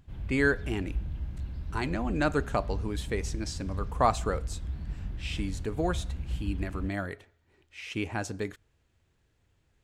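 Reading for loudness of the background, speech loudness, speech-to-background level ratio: -38.0 LUFS, -32.5 LUFS, 5.5 dB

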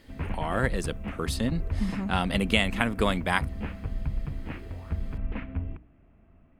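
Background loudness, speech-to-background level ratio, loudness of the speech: -36.0 LUFS, 7.5 dB, -28.5 LUFS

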